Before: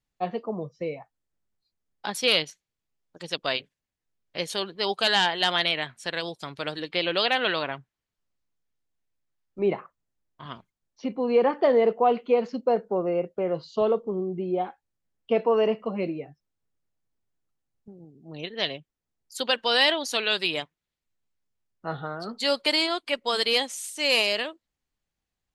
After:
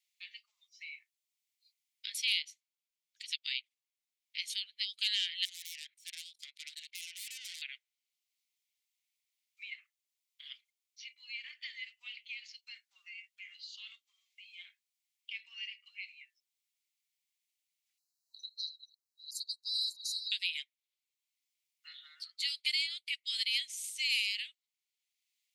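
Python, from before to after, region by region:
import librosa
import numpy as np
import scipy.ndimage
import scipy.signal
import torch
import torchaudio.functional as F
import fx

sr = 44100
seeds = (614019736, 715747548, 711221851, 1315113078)

y = fx.chain(x, sr, fx.self_delay(depth_ms=0.32),
    fx.level_steps(step_db=20), at=(5.45, 7.62))
y = fx.chain(y, sr, fx.reverse_delay(ms=332, wet_db=-8),
    fx.brickwall_bandstop(low_hz=1000.0, high_hz=3800.0), at=(17.98, 20.32))
y = scipy.signal.sosfilt(scipy.signal.cheby1(5, 1.0, 2100.0, 'highpass', fs=sr, output='sos'), y)
y = fx.band_squash(y, sr, depth_pct=40)
y = y * 10.0 ** (-4.5 / 20.0)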